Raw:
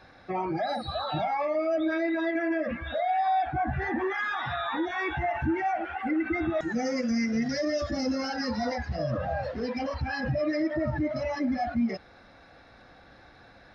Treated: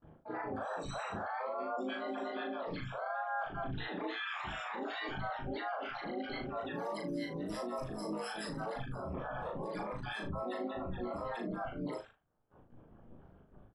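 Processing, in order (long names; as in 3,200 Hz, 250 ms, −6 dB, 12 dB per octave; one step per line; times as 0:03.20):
spectral envelope exaggerated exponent 2
reverb reduction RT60 0.89 s
low-pass that shuts in the quiet parts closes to 310 Hz, open at −27.5 dBFS
noise gate with hold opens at −50 dBFS
reversed playback
downward compressor 20 to 1, threshold −37 dBFS, peak gain reduction 15 dB
reversed playback
brickwall limiter −35.5 dBFS, peak gain reduction 5 dB
ring modulation 58 Hz
pitch-shifted copies added −4 semitones −13 dB, +7 semitones −8 dB, +12 semitones −5 dB
on a send: ambience of single reflections 38 ms −3.5 dB, 76 ms −13 dB
on the sum: level +2 dB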